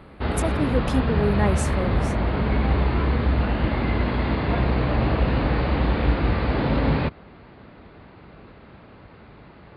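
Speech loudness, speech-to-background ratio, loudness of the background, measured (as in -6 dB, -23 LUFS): -27.0 LUFS, -4.0 dB, -23.0 LUFS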